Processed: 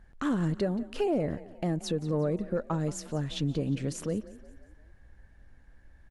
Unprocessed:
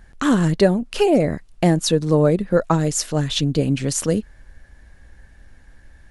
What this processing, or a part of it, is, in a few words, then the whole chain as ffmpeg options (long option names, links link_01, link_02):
soft clipper into limiter: -filter_complex "[0:a]asoftclip=type=tanh:threshold=-4dB,alimiter=limit=-11.5dB:level=0:latency=1:release=179,highshelf=frequency=2600:gain=-9,asplit=5[link_01][link_02][link_03][link_04][link_05];[link_02]adelay=178,afreqshift=32,volume=-18dB[link_06];[link_03]adelay=356,afreqshift=64,volume=-24.6dB[link_07];[link_04]adelay=534,afreqshift=96,volume=-31.1dB[link_08];[link_05]adelay=712,afreqshift=128,volume=-37.7dB[link_09];[link_01][link_06][link_07][link_08][link_09]amix=inputs=5:normalize=0,volume=-8.5dB"